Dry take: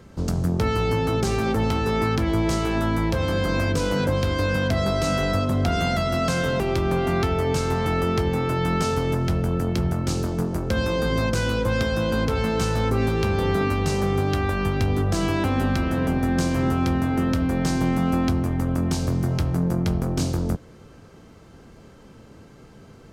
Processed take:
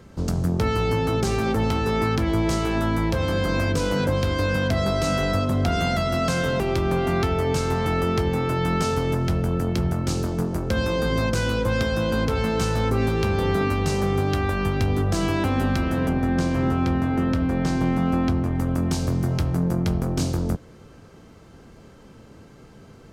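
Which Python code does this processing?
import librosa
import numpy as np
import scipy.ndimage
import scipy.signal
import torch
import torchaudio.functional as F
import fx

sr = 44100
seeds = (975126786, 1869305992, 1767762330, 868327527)

y = fx.high_shelf(x, sr, hz=5600.0, db=-10.5, at=(16.09, 18.55))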